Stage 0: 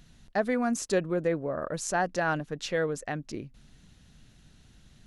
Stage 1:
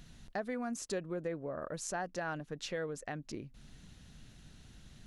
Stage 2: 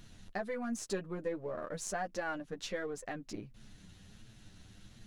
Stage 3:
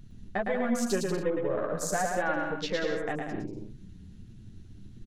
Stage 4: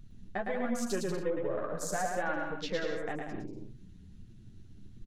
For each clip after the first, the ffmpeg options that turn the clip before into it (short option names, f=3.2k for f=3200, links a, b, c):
-af "acompressor=threshold=-45dB:ratio=2,volume=1dB"
-af "aeval=exprs='if(lt(val(0),0),0.708*val(0),val(0))':c=same,flanger=delay=9:depth=1.7:regen=0:speed=1.4:shape=triangular,volume=4.5dB"
-af "afwtdn=0.00398,aecho=1:1:110|187|240.9|278.6|305:0.631|0.398|0.251|0.158|0.1,volume=7dB"
-af "flanger=delay=0.8:depth=7.5:regen=73:speed=1.2:shape=sinusoidal"